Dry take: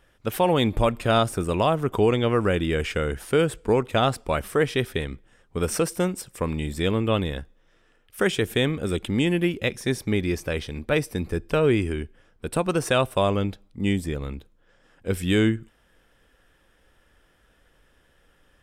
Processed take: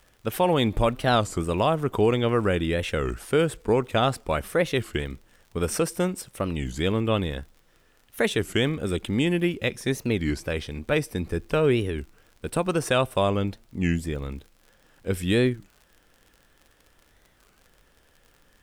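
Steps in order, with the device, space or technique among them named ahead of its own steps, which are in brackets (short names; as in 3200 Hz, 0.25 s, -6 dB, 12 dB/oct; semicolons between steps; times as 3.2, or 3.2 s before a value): warped LP (record warp 33 1/3 rpm, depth 250 cents; crackle 55/s -40 dBFS; pink noise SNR 41 dB); gain -1 dB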